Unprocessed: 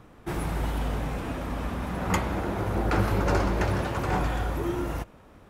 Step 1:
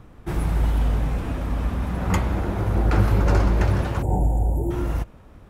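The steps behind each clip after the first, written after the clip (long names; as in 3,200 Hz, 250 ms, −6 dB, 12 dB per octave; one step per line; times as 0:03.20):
gain on a spectral selection 0:04.02–0:04.71, 950–6,800 Hz −27 dB
low-shelf EQ 140 Hz +11 dB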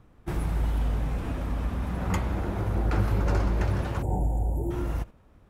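noise gate −32 dBFS, range −8 dB
in parallel at +1 dB: downward compressor, threshold −27 dBFS, peak gain reduction 14 dB
on the sum: level −8.5 dB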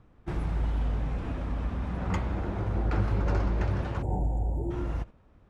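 high-frequency loss of the air 82 metres
level −2 dB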